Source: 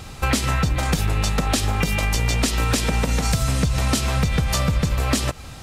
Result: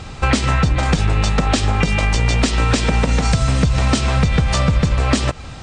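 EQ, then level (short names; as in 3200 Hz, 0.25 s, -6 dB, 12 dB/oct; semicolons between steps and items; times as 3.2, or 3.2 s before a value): brick-wall FIR low-pass 9300 Hz; high shelf 7100 Hz -11 dB; +5.0 dB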